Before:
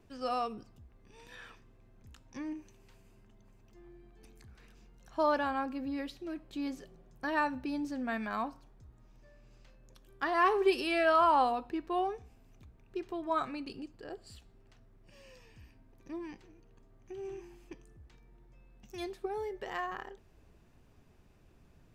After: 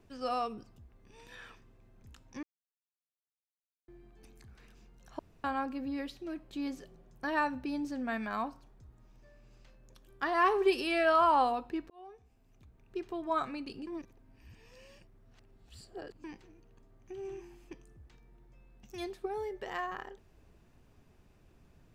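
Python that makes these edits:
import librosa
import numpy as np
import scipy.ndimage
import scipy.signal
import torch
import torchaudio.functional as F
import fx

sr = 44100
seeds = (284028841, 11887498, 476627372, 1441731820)

y = fx.edit(x, sr, fx.silence(start_s=2.43, length_s=1.45),
    fx.room_tone_fill(start_s=5.19, length_s=0.25),
    fx.fade_in_span(start_s=11.9, length_s=1.09),
    fx.reverse_span(start_s=13.87, length_s=2.37), tone=tone)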